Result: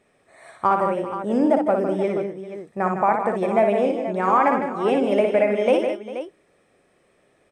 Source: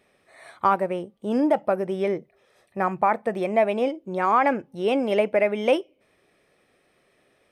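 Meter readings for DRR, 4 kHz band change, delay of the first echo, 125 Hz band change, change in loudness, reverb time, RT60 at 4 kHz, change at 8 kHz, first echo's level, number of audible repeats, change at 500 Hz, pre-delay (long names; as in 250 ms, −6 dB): no reverb audible, −1.5 dB, 59 ms, +3.5 dB, +2.5 dB, no reverb audible, no reverb audible, can't be measured, −5.0 dB, 5, +3.0 dB, no reverb audible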